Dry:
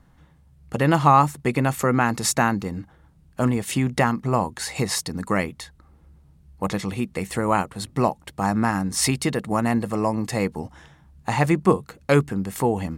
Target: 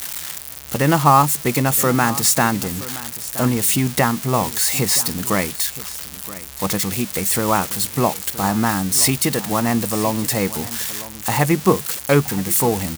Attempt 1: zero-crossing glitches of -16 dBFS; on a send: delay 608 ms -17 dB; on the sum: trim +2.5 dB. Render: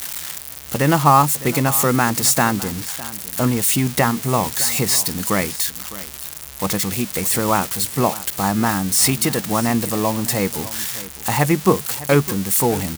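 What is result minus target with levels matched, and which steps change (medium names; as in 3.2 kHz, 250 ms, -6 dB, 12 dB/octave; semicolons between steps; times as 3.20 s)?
echo 364 ms early
change: delay 972 ms -17 dB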